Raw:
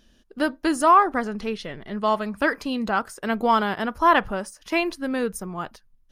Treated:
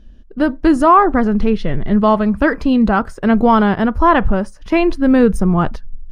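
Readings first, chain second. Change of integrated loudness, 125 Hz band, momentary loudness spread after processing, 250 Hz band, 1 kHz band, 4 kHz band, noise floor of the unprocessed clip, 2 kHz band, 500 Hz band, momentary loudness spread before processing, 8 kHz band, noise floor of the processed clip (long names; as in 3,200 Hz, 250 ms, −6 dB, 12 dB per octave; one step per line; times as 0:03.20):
+8.5 dB, +18.5 dB, 9 LU, +13.5 dB, +5.5 dB, +1.0 dB, −60 dBFS, +4.0 dB, +9.0 dB, 15 LU, can't be measured, −39 dBFS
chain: RIAA equalisation playback
automatic gain control gain up to 12.5 dB
in parallel at −2.5 dB: brickwall limiter −9 dBFS, peak gain reduction 8 dB
on the sum: level −2.5 dB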